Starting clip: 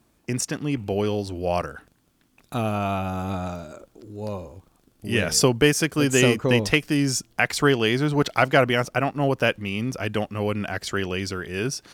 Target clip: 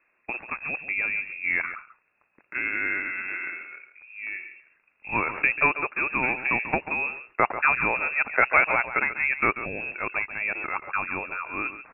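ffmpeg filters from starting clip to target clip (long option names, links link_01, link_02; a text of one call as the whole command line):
ffmpeg -i in.wav -filter_complex "[0:a]aemphasis=mode=production:type=riaa,asettb=1/sr,asplit=3[link_01][link_02][link_03];[link_01]atrim=end=5.684[link_04];[link_02]atrim=start=5.68:end=7.02,asetpts=PTS-STARTPTS,afade=type=in:duration=0.004:curve=qsin,afade=type=out:start_time=1.336:duration=0.004:curve=qsin,acompressor=threshold=-21dB:ratio=1.5[link_05];[link_03]atrim=start=7.016[link_06];[link_04][link_05]acrossfade=duration=0.004:curve1=hsin:curve2=qsin[link_07];[link_07][link_06]acrossfade=duration=0.004:curve1=qsin:curve2=hsin,asoftclip=type=tanh:threshold=-3.5dB,aecho=1:1:139:0.251,lowpass=frequency=2400:width_type=q:width=0.5098,lowpass=frequency=2400:width_type=q:width=0.6013,lowpass=frequency=2400:width_type=q:width=0.9,lowpass=frequency=2400:width_type=q:width=2.563,afreqshift=-2800" out.wav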